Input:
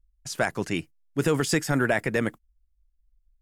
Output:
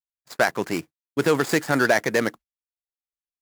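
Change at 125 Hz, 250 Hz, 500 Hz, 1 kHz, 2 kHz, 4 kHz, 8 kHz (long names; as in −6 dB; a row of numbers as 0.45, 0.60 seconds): −3.0, +1.5, +4.5, +6.0, +5.0, +2.5, +0.5 decibels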